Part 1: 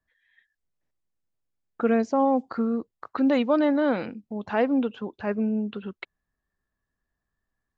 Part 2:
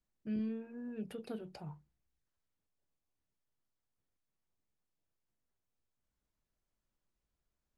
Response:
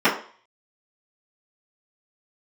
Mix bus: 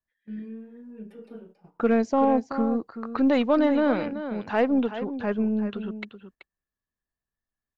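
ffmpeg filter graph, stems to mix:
-filter_complex "[0:a]volume=1.06,asplit=2[s0][s1];[s1]volume=0.282[s2];[1:a]volume=0.2,asplit=2[s3][s4];[s4]volume=0.299[s5];[2:a]atrim=start_sample=2205[s6];[s5][s6]afir=irnorm=-1:irlink=0[s7];[s2]aecho=0:1:380:1[s8];[s0][s3][s7][s8]amix=inputs=4:normalize=0,agate=range=0.282:threshold=0.00316:ratio=16:detection=peak,aeval=exprs='0.299*(cos(1*acos(clip(val(0)/0.299,-1,1)))-cos(1*PI/2))+0.0075*(cos(6*acos(clip(val(0)/0.299,-1,1)))-cos(6*PI/2))':c=same"

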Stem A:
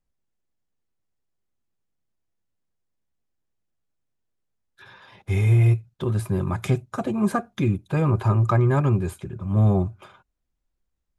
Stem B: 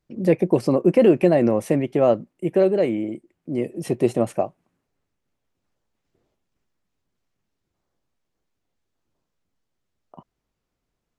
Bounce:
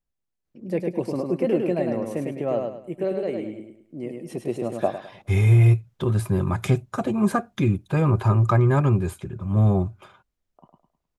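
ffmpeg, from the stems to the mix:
-filter_complex "[0:a]dynaudnorm=f=520:g=7:m=2.51,volume=0.562,asplit=2[s0][s1];[1:a]adelay=450,volume=0.944,asplit=2[s2][s3];[s3]volume=0.237[s4];[s1]apad=whole_len=513193[s5];[s2][s5]sidechaingate=range=0.398:threshold=0.00447:ratio=16:detection=peak[s6];[s4]aecho=0:1:104|208|312|416|520:1|0.33|0.109|0.0359|0.0119[s7];[s0][s6][s7]amix=inputs=3:normalize=0"

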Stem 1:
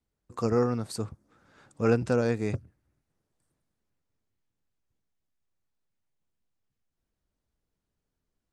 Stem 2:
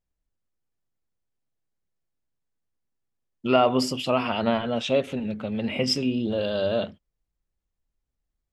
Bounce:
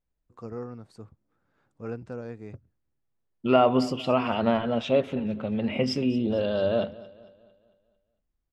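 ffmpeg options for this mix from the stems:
-filter_complex "[0:a]volume=0.266[s0];[1:a]volume=1.06,asplit=2[s1][s2];[s2]volume=0.1,aecho=0:1:225|450|675|900|1125|1350:1|0.46|0.212|0.0973|0.0448|0.0206[s3];[s0][s1][s3]amix=inputs=3:normalize=0,lowpass=f=2000:p=1"

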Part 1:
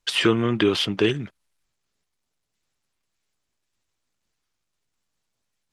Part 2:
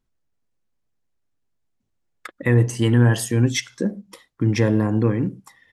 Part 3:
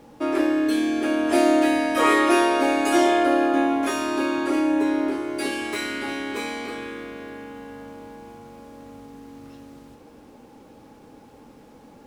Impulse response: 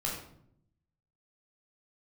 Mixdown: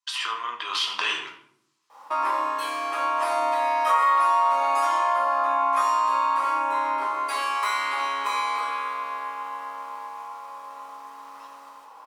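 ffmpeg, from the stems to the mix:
-filter_complex "[0:a]equalizer=f=5600:t=o:w=2.9:g=13.5,alimiter=limit=0.531:level=0:latency=1:release=12,dynaudnorm=f=230:g=9:m=1.78,volume=0.398,afade=t=in:st=0.65:d=0.34:silence=0.316228,asplit=2[s0][s1];[s1]volume=0.668[s2];[2:a]alimiter=limit=0.266:level=0:latency=1:release=303,adelay=1900,volume=0.794,asplit=2[s3][s4];[s4]volume=0.631[s5];[s0][s3]amix=inputs=2:normalize=0,agate=range=0.0224:threshold=0.00708:ratio=3:detection=peak,acompressor=threshold=0.0251:ratio=6,volume=1[s6];[3:a]atrim=start_sample=2205[s7];[s2][s5]amix=inputs=2:normalize=0[s8];[s8][s7]afir=irnorm=-1:irlink=0[s9];[s6][s9]amix=inputs=2:normalize=0,highpass=f=1000:t=q:w=10,acompressor=threshold=0.0794:ratio=2"

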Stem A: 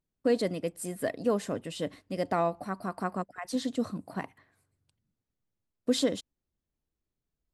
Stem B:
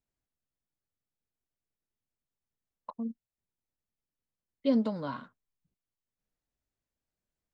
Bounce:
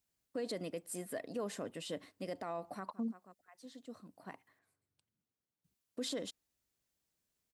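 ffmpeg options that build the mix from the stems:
-filter_complex "[0:a]highpass=f=240:p=1,adelay=100,volume=0.596[s0];[1:a]highpass=42,highshelf=f=2500:g=10,volume=0.944,asplit=3[s1][s2][s3];[s1]atrim=end=4.59,asetpts=PTS-STARTPTS,afade=t=out:st=4.586:d=0.004:c=hsin[s4];[s2]atrim=start=4.59:end=5.64,asetpts=PTS-STARTPTS,volume=0[s5];[s3]atrim=start=5.64,asetpts=PTS-STARTPTS,afade=t=in:d=0.004:c=hsin[s6];[s4][s5][s6]concat=n=3:v=0:a=1,asplit=2[s7][s8];[s8]apad=whole_len=336494[s9];[s0][s9]sidechaincompress=threshold=0.002:ratio=12:attack=6.6:release=1250[s10];[s10][s7]amix=inputs=2:normalize=0,alimiter=level_in=2.11:limit=0.0631:level=0:latency=1:release=58,volume=0.473"

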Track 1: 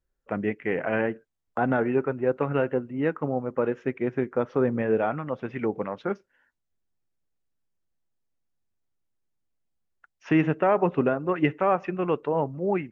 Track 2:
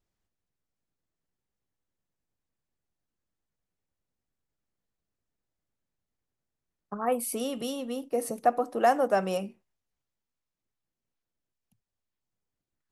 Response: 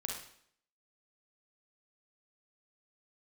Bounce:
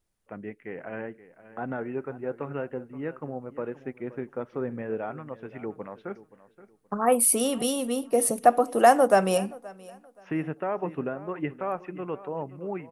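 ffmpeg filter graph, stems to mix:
-filter_complex "[0:a]acrossover=split=2900[s0][s1];[s1]acompressor=threshold=0.00178:ratio=4:attack=1:release=60[s2];[s0][s2]amix=inputs=2:normalize=0,volume=0.282,asplit=2[s3][s4];[s4]volume=0.15[s5];[1:a]equalizer=f=9700:t=o:w=0.31:g=11.5,volume=1.41,asplit=2[s6][s7];[s7]volume=0.075[s8];[s5][s8]amix=inputs=2:normalize=0,aecho=0:1:525|1050|1575|2100:1|0.26|0.0676|0.0176[s9];[s3][s6][s9]amix=inputs=3:normalize=0,dynaudnorm=f=180:g=17:m=1.41"

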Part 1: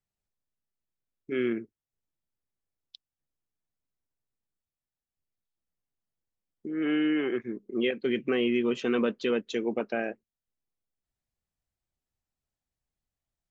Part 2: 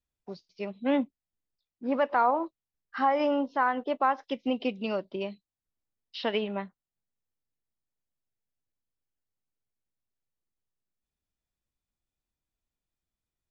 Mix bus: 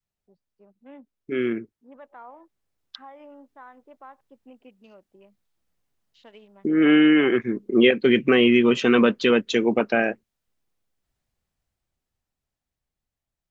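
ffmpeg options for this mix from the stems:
-filter_complex "[0:a]highshelf=f=5200:g=-4.5,dynaudnorm=f=380:g=13:m=3.35,adynamicequalizer=threshold=0.0316:dfrequency=410:dqfactor=0.73:tfrequency=410:tqfactor=0.73:attack=5:release=100:ratio=0.375:range=2.5:mode=cutabove:tftype=bell,volume=1.33,asplit=2[s0][s1];[1:a]afwtdn=0.00708,volume=0.251[s2];[s1]apad=whole_len=595508[s3];[s2][s3]sidechaingate=range=0.398:threshold=0.00794:ratio=16:detection=peak[s4];[s0][s4]amix=inputs=2:normalize=0"

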